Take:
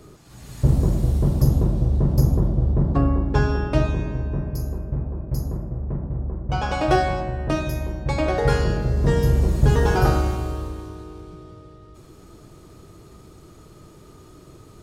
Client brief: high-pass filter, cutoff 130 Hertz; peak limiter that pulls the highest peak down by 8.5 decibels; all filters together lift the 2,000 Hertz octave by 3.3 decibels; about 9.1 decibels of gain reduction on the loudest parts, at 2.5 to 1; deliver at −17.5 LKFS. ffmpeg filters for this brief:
ffmpeg -i in.wav -af "highpass=130,equalizer=frequency=2000:width_type=o:gain=4.5,acompressor=threshold=-30dB:ratio=2.5,volume=17dB,alimiter=limit=-7.5dB:level=0:latency=1" out.wav

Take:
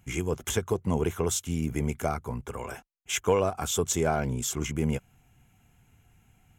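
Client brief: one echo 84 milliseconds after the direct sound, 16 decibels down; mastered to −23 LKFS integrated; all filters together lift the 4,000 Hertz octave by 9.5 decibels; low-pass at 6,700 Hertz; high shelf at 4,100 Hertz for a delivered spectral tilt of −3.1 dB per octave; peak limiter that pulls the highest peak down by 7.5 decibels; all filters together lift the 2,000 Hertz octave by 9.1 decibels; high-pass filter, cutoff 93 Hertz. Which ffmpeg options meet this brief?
ffmpeg -i in.wav -af "highpass=93,lowpass=6700,equalizer=frequency=2000:width_type=o:gain=8,equalizer=frequency=4000:width_type=o:gain=5.5,highshelf=frequency=4100:gain=8,alimiter=limit=-15dB:level=0:latency=1,aecho=1:1:84:0.158,volume=5dB" out.wav

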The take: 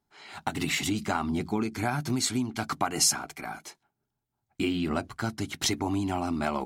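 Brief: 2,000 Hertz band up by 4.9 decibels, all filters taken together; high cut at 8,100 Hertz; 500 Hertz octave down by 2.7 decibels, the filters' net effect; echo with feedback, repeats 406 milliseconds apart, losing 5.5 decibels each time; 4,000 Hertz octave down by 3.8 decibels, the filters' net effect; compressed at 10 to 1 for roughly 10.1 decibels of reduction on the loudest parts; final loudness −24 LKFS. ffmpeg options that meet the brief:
ffmpeg -i in.wav -af "lowpass=8100,equalizer=frequency=500:width_type=o:gain=-4.5,equalizer=frequency=2000:width_type=o:gain=8.5,equalizer=frequency=4000:width_type=o:gain=-7.5,acompressor=threshold=-31dB:ratio=10,aecho=1:1:406|812|1218|1624|2030|2436|2842:0.531|0.281|0.149|0.079|0.0419|0.0222|0.0118,volume=11dB" out.wav

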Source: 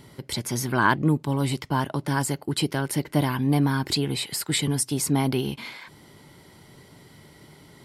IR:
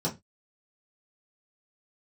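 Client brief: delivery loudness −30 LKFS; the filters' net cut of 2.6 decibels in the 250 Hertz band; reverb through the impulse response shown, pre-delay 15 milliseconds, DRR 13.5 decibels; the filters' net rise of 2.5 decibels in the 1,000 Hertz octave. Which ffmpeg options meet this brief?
-filter_complex "[0:a]equalizer=frequency=250:width_type=o:gain=-3.5,equalizer=frequency=1000:width_type=o:gain=3,asplit=2[link_01][link_02];[1:a]atrim=start_sample=2205,adelay=15[link_03];[link_02][link_03]afir=irnorm=-1:irlink=0,volume=-20.5dB[link_04];[link_01][link_04]amix=inputs=2:normalize=0,volume=-5dB"

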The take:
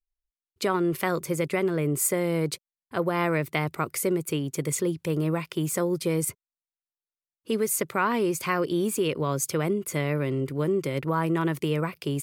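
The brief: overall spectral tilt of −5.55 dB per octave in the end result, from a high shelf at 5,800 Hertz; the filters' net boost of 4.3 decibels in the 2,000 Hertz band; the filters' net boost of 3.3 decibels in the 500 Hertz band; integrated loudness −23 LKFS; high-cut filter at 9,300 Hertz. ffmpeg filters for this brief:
ffmpeg -i in.wav -af "lowpass=9300,equalizer=frequency=500:width_type=o:gain=4,equalizer=frequency=2000:width_type=o:gain=6,highshelf=frequency=5800:gain=-8.5,volume=2dB" out.wav

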